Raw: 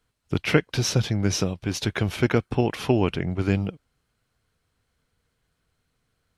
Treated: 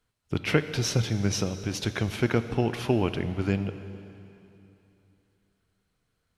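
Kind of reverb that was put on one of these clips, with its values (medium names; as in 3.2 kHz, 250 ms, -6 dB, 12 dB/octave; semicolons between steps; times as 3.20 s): plate-style reverb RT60 3 s, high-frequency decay 0.95×, DRR 10.5 dB; trim -3.5 dB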